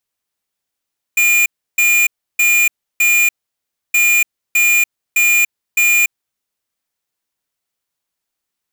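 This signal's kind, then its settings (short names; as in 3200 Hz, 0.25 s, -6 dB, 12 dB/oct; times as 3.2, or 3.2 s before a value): beep pattern square 2420 Hz, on 0.29 s, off 0.32 s, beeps 4, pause 0.65 s, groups 2, -12 dBFS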